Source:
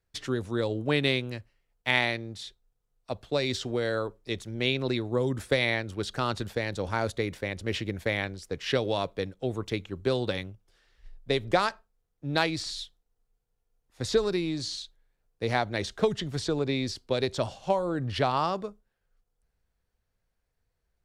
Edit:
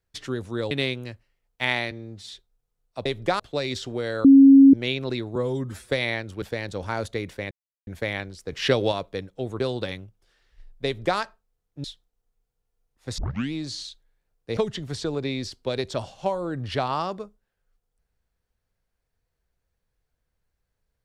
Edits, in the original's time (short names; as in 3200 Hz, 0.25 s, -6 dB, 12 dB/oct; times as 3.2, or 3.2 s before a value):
0.71–0.97 cut
2.17–2.44 stretch 1.5×
4.03–4.52 bleep 273 Hz -7.5 dBFS
5.14–5.51 stretch 1.5×
6.02–6.46 cut
7.55–7.91 mute
8.56–8.96 gain +5.5 dB
9.64–10.06 cut
11.31–11.65 copy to 3.18
12.3–12.77 cut
14.11 tape start 0.35 s
15.5–16.01 cut